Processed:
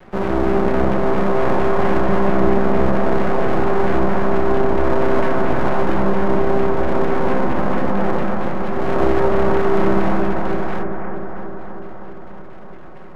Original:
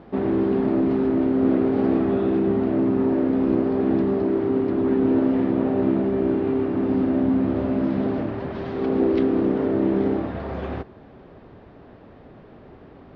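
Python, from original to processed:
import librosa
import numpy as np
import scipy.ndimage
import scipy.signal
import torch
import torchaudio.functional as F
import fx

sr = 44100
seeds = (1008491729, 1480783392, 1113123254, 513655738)

y = fx.lower_of_two(x, sr, delay_ms=5.4)
y = fx.filter_lfo_lowpass(y, sr, shape='saw_down', hz=4.4, low_hz=900.0, high_hz=2300.0, q=1.8)
y = np.maximum(y, 0.0)
y = fx.echo_bbd(y, sr, ms=315, stages=4096, feedback_pct=69, wet_db=-5)
y = y * 10.0 ** (7.5 / 20.0)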